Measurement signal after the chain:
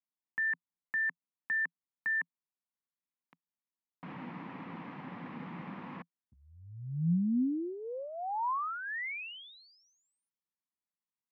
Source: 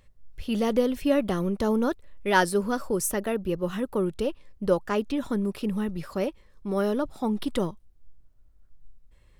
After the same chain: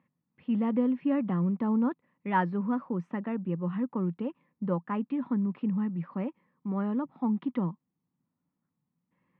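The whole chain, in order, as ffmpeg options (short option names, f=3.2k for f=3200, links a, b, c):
-af "aeval=exprs='0.422*(cos(1*acos(clip(val(0)/0.422,-1,1)))-cos(1*PI/2))+0.00299*(cos(4*acos(clip(val(0)/0.422,-1,1)))-cos(4*PI/2))':c=same,highpass=f=160:w=0.5412,highpass=f=160:w=1.3066,equalizer=f=170:t=q:w=4:g=9,equalizer=f=250:t=q:w=4:g=6,equalizer=f=410:t=q:w=4:g=-9,equalizer=f=620:t=q:w=4:g=-9,equalizer=f=1k:t=q:w=4:g=4,equalizer=f=1.5k:t=q:w=4:g=-7,lowpass=f=2.1k:w=0.5412,lowpass=f=2.1k:w=1.3066,volume=-4.5dB"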